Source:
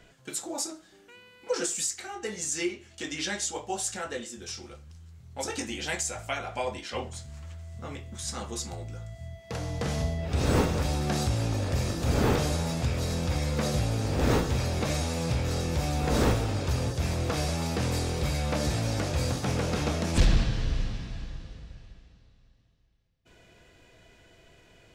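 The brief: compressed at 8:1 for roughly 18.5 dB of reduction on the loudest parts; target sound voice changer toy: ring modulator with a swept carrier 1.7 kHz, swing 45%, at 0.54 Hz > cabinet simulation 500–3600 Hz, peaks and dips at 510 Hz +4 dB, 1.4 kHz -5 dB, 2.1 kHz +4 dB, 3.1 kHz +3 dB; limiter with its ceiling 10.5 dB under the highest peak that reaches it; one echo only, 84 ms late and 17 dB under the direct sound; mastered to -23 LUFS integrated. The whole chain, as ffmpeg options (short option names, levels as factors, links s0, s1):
-af "acompressor=threshold=0.0158:ratio=8,alimiter=level_in=2.99:limit=0.0631:level=0:latency=1,volume=0.335,aecho=1:1:84:0.141,aeval=exprs='val(0)*sin(2*PI*1700*n/s+1700*0.45/0.54*sin(2*PI*0.54*n/s))':c=same,highpass=500,equalizer=f=510:t=q:w=4:g=4,equalizer=f=1400:t=q:w=4:g=-5,equalizer=f=2100:t=q:w=4:g=4,equalizer=f=3100:t=q:w=4:g=3,lowpass=f=3600:w=0.5412,lowpass=f=3600:w=1.3066,volume=9.44"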